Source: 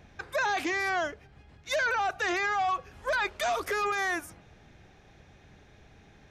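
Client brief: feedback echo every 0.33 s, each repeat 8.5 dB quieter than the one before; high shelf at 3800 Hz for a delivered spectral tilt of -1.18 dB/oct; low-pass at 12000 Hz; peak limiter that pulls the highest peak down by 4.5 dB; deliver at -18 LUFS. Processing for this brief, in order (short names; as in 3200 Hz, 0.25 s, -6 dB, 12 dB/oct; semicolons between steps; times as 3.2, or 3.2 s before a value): LPF 12000 Hz; high shelf 3800 Hz -7 dB; limiter -27 dBFS; feedback echo 0.33 s, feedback 38%, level -8.5 dB; gain +15.5 dB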